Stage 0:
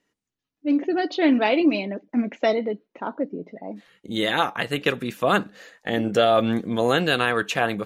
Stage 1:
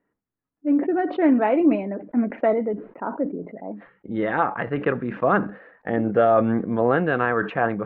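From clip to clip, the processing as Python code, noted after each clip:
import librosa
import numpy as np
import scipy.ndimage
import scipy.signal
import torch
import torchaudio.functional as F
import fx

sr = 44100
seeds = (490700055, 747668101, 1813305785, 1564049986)

y = scipy.signal.sosfilt(scipy.signal.butter(4, 1700.0, 'lowpass', fs=sr, output='sos'), x)
y = fx.sustainer(y, sr, db_per_s=130.0)
y = F.gain(torch.from_numpy(y), 1.0).numpy()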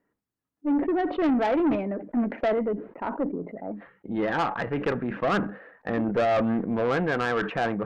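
y = fx.tube_stage(x, sr, drive_db=19.0, bias=0.2)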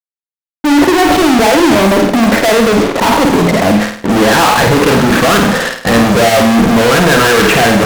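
y = fx.fuzz(x, sr, gain_db=51.0, gate_db=-48.0)
y = fx.room_flutter(y, sr, wall_m=8.9, rt60_s=0.53)
y = F.gain(torch.from_numpy(y), 4.5).numpy()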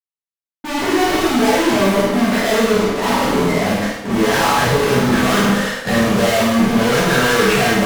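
y = fx.rev_plate(x, sr, seeds[0], rt60_s=0.7, hf_ratio=1.0, predelay_ms=0, drr_db=-7.0)
y = F.gain(torch.from_numpy(y), -14.0).numpy()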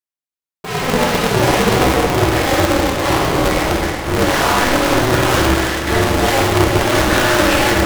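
y = x + 10.0 ** (-7.5 / 20.0) * np.pad(x, (int(370 * sr / 1000.0), 0))[:len(x)]
y = y * np.sign(np.sin(2.0 * np.pi * 130.0 * np.arange(len(y)) / sr))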